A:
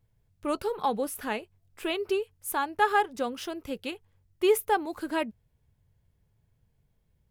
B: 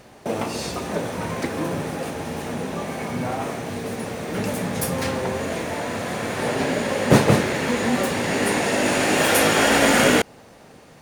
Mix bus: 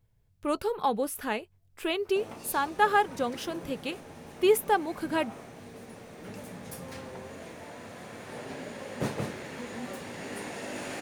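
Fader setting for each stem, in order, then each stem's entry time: +0.5, −17.0 decibels; 0.00, 1.90 seconds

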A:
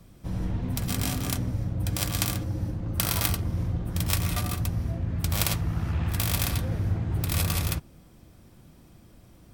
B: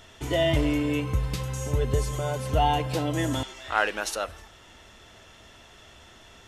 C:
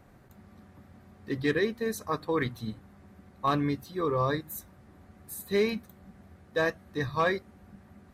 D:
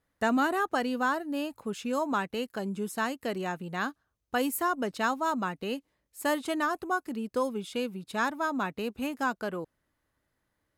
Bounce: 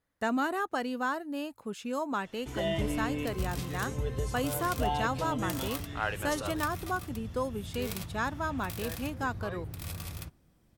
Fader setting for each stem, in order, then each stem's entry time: −13.5, −8.5, −18.0, −3.5 decibels; 2.50, 2.25, 2.25, 0.00 seconds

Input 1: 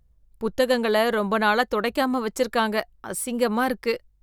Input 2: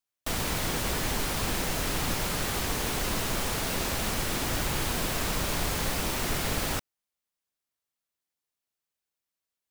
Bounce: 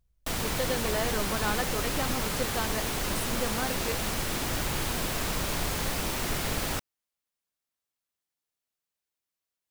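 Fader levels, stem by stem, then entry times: −11.0, −1.0 decibels; 0.00, 0.00 seconds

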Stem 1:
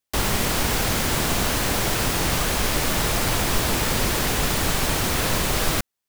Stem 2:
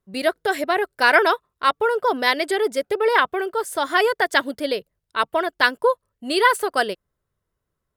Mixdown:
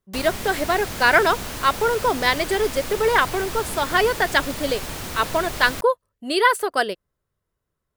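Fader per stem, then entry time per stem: −9.0, −0.5 decibels; 0.00, 0.00 seconds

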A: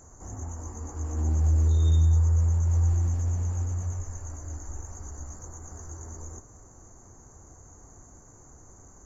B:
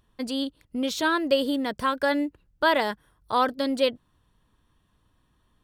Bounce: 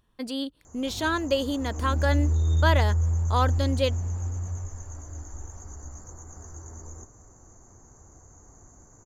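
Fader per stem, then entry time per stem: −1.5, −2.5 decibels; 0.65, 0.00 seconds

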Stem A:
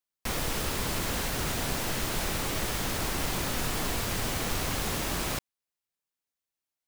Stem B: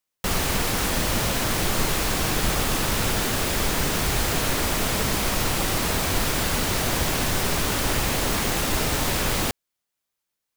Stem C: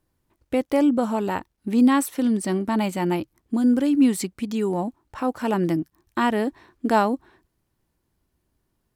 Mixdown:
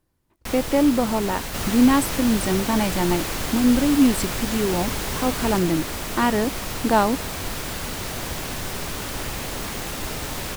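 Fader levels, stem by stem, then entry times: 0.0, −6.0, +1.0 decibels; 0.20, 1.30, 0.00 seconds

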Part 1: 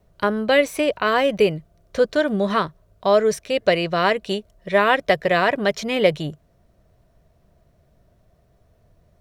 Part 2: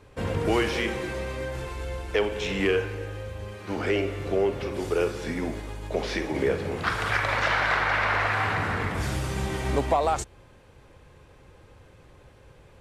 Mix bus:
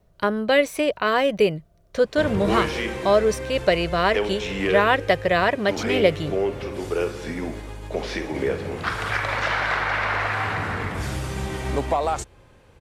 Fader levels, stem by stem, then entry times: −1.5, +0.5 decibels; 0.00, 2.00 seconds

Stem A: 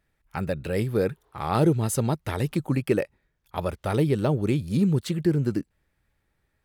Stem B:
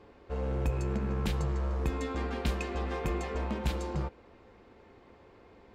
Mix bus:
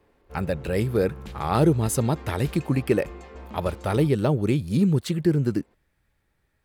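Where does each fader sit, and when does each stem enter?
+1.5, −8.0 decibels; 0.00, 0.00 seconds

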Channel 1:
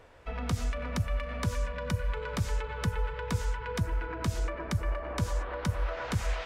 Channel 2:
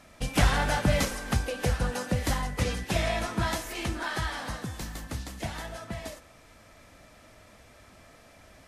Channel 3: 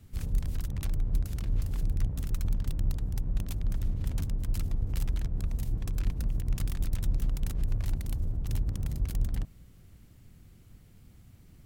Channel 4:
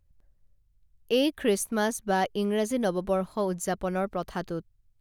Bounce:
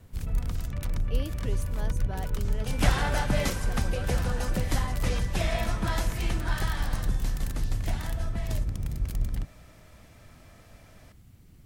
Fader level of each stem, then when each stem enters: −9.5, −2.5, +0.5, −14.5 decibels; 0.00, 2.45, 0.00, 0.00 seconds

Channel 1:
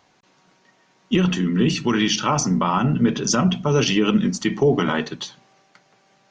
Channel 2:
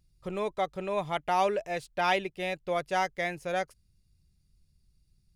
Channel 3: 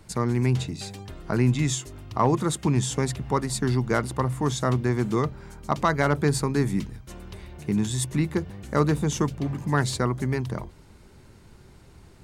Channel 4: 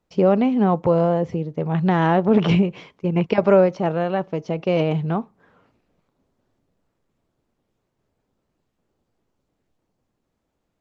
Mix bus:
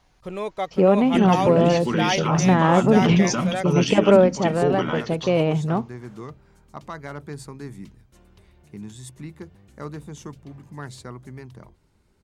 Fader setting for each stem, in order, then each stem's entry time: −5.5, +2.5, −13.0, 0.0 decibels; 0.00, 0.00, 1.05, 0.60 seconds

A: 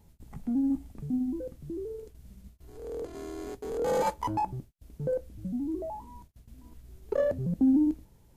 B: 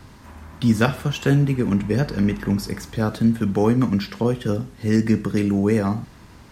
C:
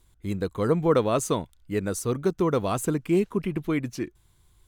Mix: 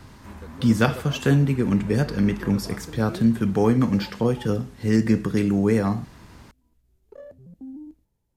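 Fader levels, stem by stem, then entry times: −16.0, −1.0, −16.5 decibels; 0.00, 0.00, 0.00 seconds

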